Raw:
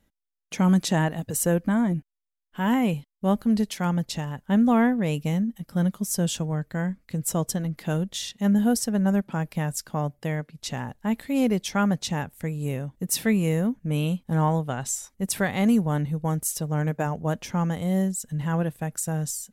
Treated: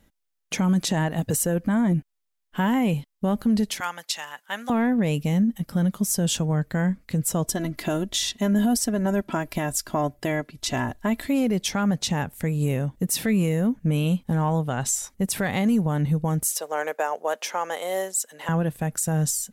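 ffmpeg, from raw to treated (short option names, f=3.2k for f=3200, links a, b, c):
-filter_complex "[0:a]asettb=1/sr,asplit=3[a][b][c];[a]atrim=end=3.804[d];[b]atrim=start=3.8:end=4.7,asetpts=PTS-STARTPTS,afade=t=in:d=0.004:c=qsin,afade=t=out:st=0.896:d=0.004:c=qsin,highpass=1.2k[e];[c]atrim=start=4.696[f];[d][e]acrossfade=d=0.004:c1=hsin:c2=qsin[g];[g][f]acrossfade=d=0.004:c1=qsin:c2=hsin,asettb=1/sr,asplit=3[h][i][j];[h]atrim=end=7.444[k];[i]atrim=start=7.44:end=11.28,asetpts=PTS-STARTPTS,afade=t=in:d=0.004:c=qsin,afade=t=out:st=3.836:d=0.004:c=qsin,aecho=1:1:3:0.67,atrim=end_sample=169344[l];[j]atrim=start=11.276[m];[k][l]acrossfade=d=0.004:c1=hsin:c2=qsin[n];[n][m]acrossfade=d=0.004:c1=qsin:c2=hsin,asettb=1/sr,asplit=3[o][p][q];[o]atrim=end=16.504[r];[p]atrim=start=16.5:end=18.49,asetpts=PTS-STARTPTS,afade=t=in:d=0.004:c=qsin,afade=t=out:st=1.986:d=0.004:c=qsin,highpass=f=460:w=0.5412,highpass=f=460:w=1.3066[s];[q]atrim=start=18.486[t];[r][s]acrossfade=d=0.004:c1=hsin:c2=qsin[u];[u][t]acrossfade=d=0.004:c1=qsin:c2=hsin,acontrast=83,alimiter=limit=-14.5dB:level=0:latency=1:release=138"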